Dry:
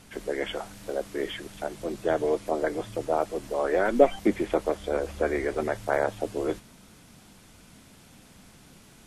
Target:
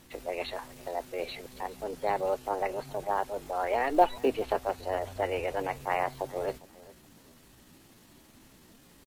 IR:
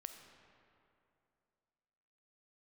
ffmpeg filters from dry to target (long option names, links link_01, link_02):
-af "aecho=1:1:413|826:0.0841|0.0194,asetrate=55563,aresample=44100,atempo=0.793701,acrusher=bits=9:mode=log:mix=0:aa=0.000001,volume=-4dB"